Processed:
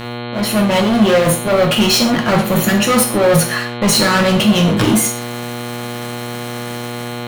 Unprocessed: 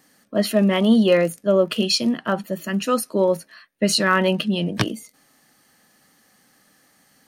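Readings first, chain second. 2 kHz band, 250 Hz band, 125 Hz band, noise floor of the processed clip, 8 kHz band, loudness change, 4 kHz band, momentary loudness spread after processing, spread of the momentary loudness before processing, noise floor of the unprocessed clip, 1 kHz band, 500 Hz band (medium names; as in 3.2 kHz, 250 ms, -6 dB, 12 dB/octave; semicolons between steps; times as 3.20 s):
+8.0 dB, +6.5 dB, +10.0 dB, -26 dBFS, +13.0 dB, +6.5 dB, +8.0 dB, 13 LU, 10 LU, -60 dBFS, +9.0 dB, +5.0 dB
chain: band-stop 4.6 kHz, Q 6.1; reverse; compression 5:1, threshold -33 dBFS, peak gain reduction 19 dB; reverse; waveshaping leveller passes 5; level rider gain up to 13 dB; flange 0.63 Hz, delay 6.6 ms, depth 5.8 ms, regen -65%; mains buzz 120 Hz, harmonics 36, -28 dBFS -4 dB/octave; gated-style reverb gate 160 ms falling, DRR 1.5 dB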